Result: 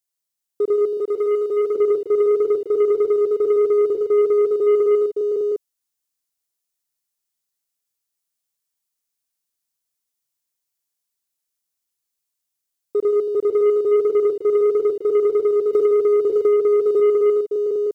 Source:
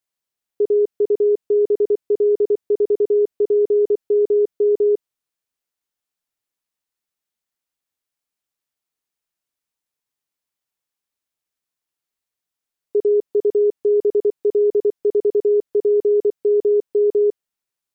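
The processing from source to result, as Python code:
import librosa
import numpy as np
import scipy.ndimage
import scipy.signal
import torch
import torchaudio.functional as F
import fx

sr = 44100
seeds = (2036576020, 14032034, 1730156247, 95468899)

y = fx.bass_treble(x, sr, bass_db=1, treble_db=10)
y = fx.echo_multitap(y, sr, ms=(77, 156, 163, 563, 565, 608), db=(-8.5, -10.0, -17.0, -6.0, -16.0, -4.0))
y = fx.leveller(y, sr, passes=1)
y = fx.low_shelf(y, sr, hz=270.0, db=-10.5, at=(0.97, 1.76))
y = fx.band_squash(y, sr, depth_pct=100, at=(15.73, 17.0))
y = y * librosa.db_to_amplitude(-4.5)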